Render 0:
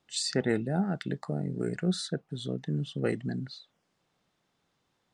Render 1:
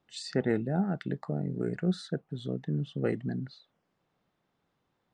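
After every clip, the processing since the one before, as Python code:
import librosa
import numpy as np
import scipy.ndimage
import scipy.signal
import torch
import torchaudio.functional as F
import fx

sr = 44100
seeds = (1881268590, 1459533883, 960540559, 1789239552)

y = fx.lowpass(x, sr, hz=1800.0, slope=6)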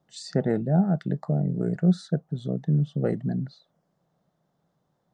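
y = fx.graphic_eq_15(x, sr, hz=(160, 630, 2500, 6300), db=(11, 8, -9, 4))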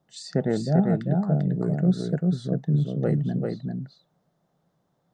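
y = x + 10.0 ** (-3.5 / 20.0) * np.pad(x, (int(394 * sr / 1000.0), 0))[:len(x)]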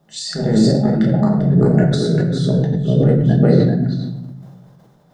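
y = fx.over_compress(x, sr, threshold_db=-26.0, ratio=-0.5)
y = fx.room_shoebox(y, sr, seeds[0], volume_m3=270.0, walls='mixed', distance_m=1.3)
y = fx.sustainer(y, sr, db_per_s=34.0)
y = y * librosa.db_to_amplitude(7.0)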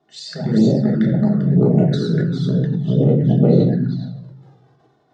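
y = fx.env_flanger(x, sr, rest_ms=2.8, full_db=-8.5)
y = fx.bandpass_edges(y, sr, low_hz=110.0, high_hz=4700.0)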